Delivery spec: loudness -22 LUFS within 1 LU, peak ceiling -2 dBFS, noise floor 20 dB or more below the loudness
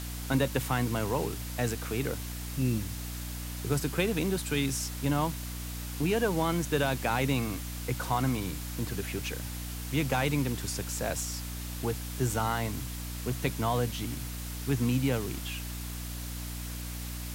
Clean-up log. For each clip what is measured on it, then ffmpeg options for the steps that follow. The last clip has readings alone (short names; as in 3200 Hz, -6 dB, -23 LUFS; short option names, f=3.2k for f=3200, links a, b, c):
hum 60 Hz; harmonics up to 300 Hz; hum level -36 dBFS; noise floor -38 dBFS; noise floor target -52 dBFS; loudness -31.5 LUFS; peak -13.5 dBFS; loudness target -22.0 LUFS
-> -af "bandreject=f=60:t=h:w=6,bandreject=f=120:t=h:w=6,bandreject=f=180:t=h:w=6,bandreject=f=240:t=h:w=6,bandreject=f=300:t=h:w=6"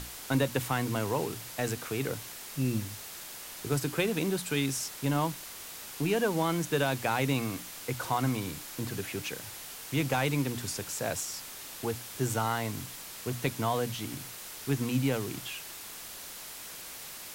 hum none; noise floor -44 dBFS; noise floor target -53 dBFS
-> -af "afftdn=nr=9:nf=-44"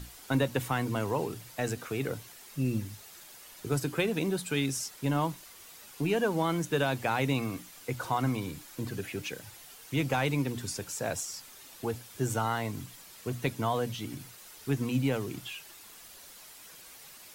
noise floor -51 dBFS; noise floor target -53 dBFS
-> -af "afftdn=nr=6:nf=-51"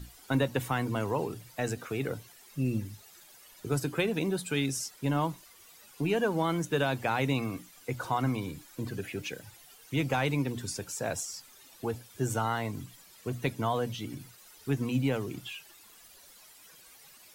noise floor -56 dBFS; loudness -32.5 LUFS; peak -14.0 dBFS; loudness target -22.0 LUFS
-> -af "volume=10.5dB"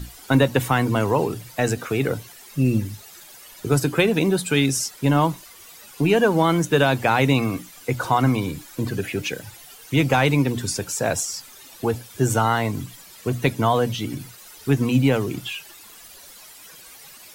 loudness -22.0 LUFS; peak -3.5 dBFS; noise floor -45 dBFS